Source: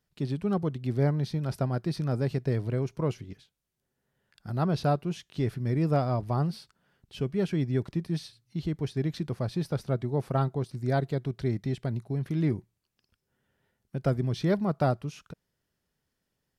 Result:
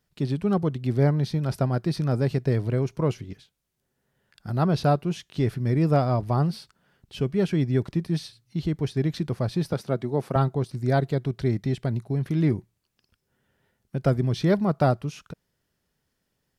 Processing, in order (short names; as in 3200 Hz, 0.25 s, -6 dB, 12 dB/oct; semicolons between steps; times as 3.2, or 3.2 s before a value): 9.73–10.36 HPF 160 Hz; gain +4.5 dB